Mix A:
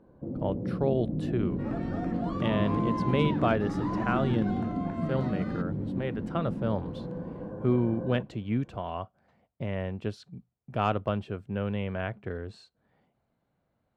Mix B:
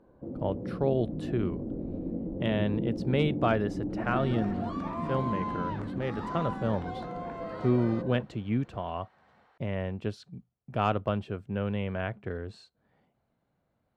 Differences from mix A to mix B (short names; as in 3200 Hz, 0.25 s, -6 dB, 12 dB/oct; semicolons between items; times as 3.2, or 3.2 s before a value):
first sound: add bell 140 Hz -6 dB 1.7 oct; second sound: entry +2.40 s